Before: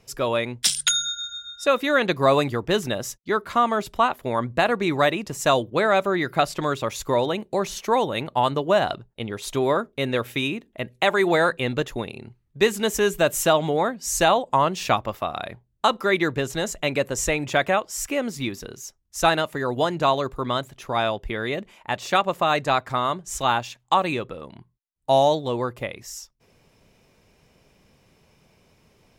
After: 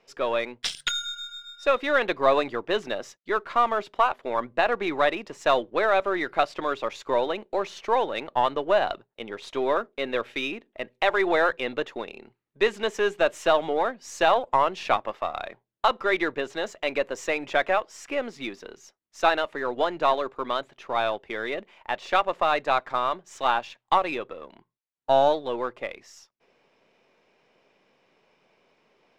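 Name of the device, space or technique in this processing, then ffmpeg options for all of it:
crystal radio: -af "highpass=350,lowpass=3400,aeval=exprs='if(lt(val(0),0),0.708*val(0),val(0))':channel_layout=same"

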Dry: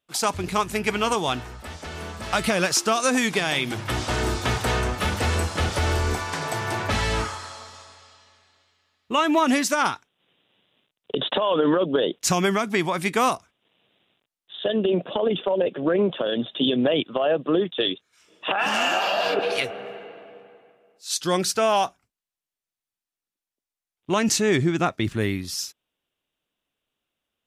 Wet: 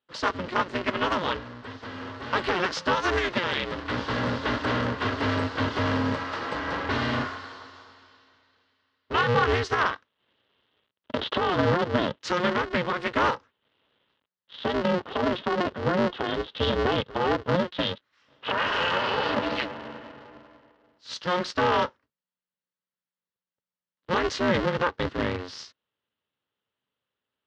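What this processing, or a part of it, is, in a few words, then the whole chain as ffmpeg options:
ring modulator pedal into a guitar cabinet: -af "aeval=exprs='val(0)*sgn(sin(2*PI*180*n/s))':channel_layout=same,highpass=100,equalizer=frequency=170:width_type=q:width=4:gain=-6,equalizer=frequency=340:width_type=q:width=4:gain=-5,equalizer=frequency=730:width_type=q:width=4:gain=-8,equalizer=frequency=2400:width_type=q:width=4:gain=-8,equalizer=frequency=3600:width_type=q:width=4:gain=-4,lowpass=frequency=4000:width=0.5412,lowpass=frequency=4000:width=1.3066"

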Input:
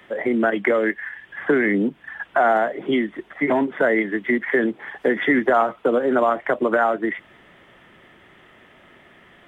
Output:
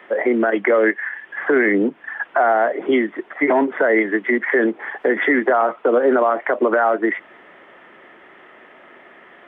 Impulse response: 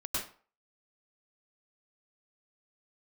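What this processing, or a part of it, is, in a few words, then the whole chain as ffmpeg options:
DJ mixer with the lows and highs turned down: -filter_complex "[0:a]acrossover=split=260 2600:gain=0.0891 1 0.126[link_01][link_02][link_03];[link_01][link_02][link_03]amix=inputs=3:normalize=0,alimiter=limit=-14.5dB:level=0:latency=1:release=52,volume=7dB"

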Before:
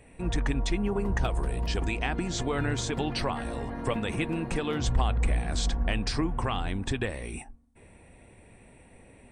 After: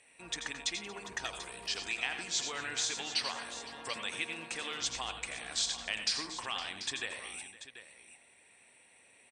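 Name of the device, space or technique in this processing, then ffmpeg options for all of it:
piezo pickup straight into a mixer: -af "lowpass=5900,aderivative,aecho=1:1:85|98|117|231|512|738:0.335|0.251|0.141|0.1|0.126|0.237,volume=8dB"

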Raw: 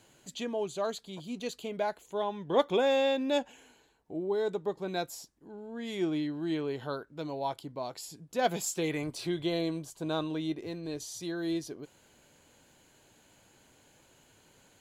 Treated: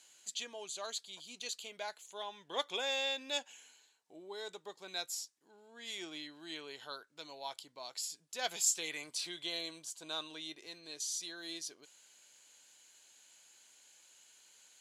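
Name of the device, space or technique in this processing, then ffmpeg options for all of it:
piezo pickup straight into a mixer: -af "lowpass=7200,aderivative,volume=8dB"

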